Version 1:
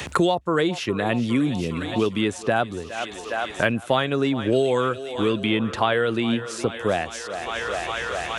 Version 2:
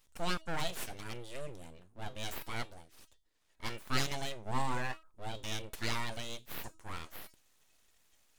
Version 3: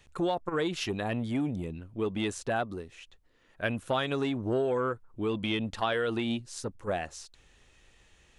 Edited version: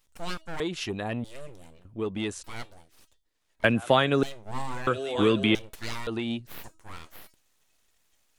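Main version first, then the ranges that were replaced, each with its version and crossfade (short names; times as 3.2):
2
0.6–1.24 from 3
1.85–2.44 from 3
3.64–4.23 from 1
4.87–5.55 from 1
6.07–6.47 from 3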